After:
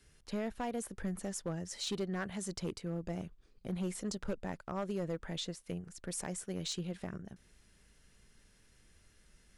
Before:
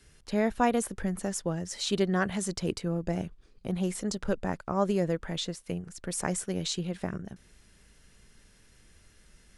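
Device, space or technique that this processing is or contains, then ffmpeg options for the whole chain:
limiter into clipper: -af "alimiter=limit=-18.5dB:level=0:latency=1:release=437,asoftclip=type=hard:threshold=-24dB,volume=-6dB"

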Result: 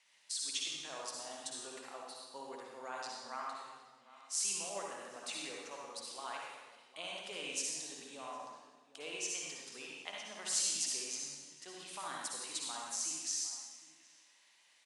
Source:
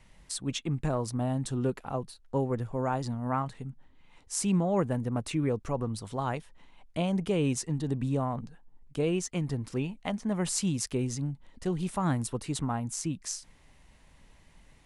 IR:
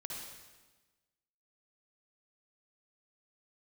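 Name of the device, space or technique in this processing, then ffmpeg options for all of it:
supermarket ceiling speaker: -filter_complex "[0:a]highpass=310,lowpass=5500,aderivative,asplit=2[link_01][link_02];[link_02]adelay=758,volume=-16dB,highshelf=frequency=4000:gain=-17.1[link_03];[link_01][link_03]amix=inputs=2:normalize=0[link_04];[1:a]atrim=start_sample=2205[link_05];[link_04][link_05]afir=irnorm=-1:irlink=0,volume=9dB"

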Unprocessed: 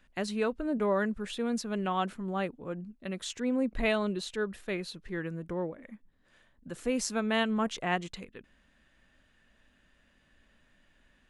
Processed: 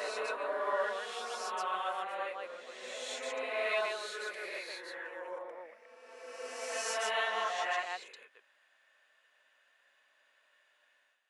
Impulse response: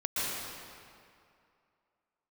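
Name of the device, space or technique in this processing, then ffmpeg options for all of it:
ghost voice: -filter_complex "[0:a]areverse[link_01];[1:a]atrim=start_sample=2205[link_02];[link_01][link_02]afir=irnorm=-1:irlink=0,areverse,highpass=frequency=560:width=0.5412,highpass=frequency=560:width=1.3066,volume=-8dB"

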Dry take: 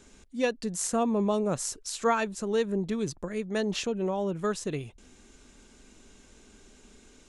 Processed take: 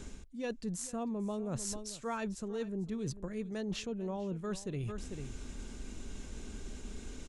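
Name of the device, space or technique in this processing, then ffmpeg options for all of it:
compression on the reversed sound: -af "lowshelf=frequency=200:gain=11.5,aecho=1:1:446:0.119,areverse,acompressor=threshold=-41dB:ratio=6,areverse,volume=4.5dB"

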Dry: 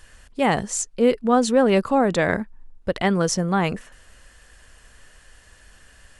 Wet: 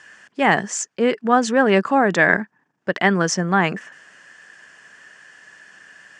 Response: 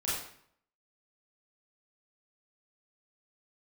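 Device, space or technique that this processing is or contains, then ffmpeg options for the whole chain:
television speaker: -af "highpass=frequency=170:width=0.5412,highpass=frequency=170:width=1.3066,equalizer=frequency=240:width_type=q:width=4:gain=-5,equalizer=frequency=510:width_type=q:width=4:gain=-6,equalizer=frequency=1700:width_type=q:width=4:gain=8,equalizer=frequency=4000:width_type=q:width=4:gain=-8,lowpass=frequency=7000:width=0.5412,lowpass=frequency=7000:width=1.3066,volume=4dB"

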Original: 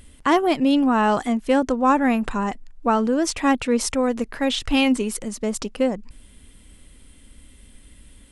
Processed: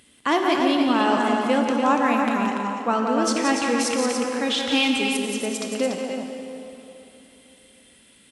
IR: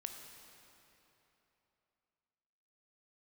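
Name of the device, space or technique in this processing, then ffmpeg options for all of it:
stadium PA: -filter_complex "[0:a]highpass=190,equalizer=frequency=3500:width_type=o:width=1.9:gain=5,aecho=1:1:174.9|288.6:0.501|0.501[link_01];[1:a]atrim=start_sample=2205[link_02];[link_01][link_02]afir=irnorm=-1:irlink=0"

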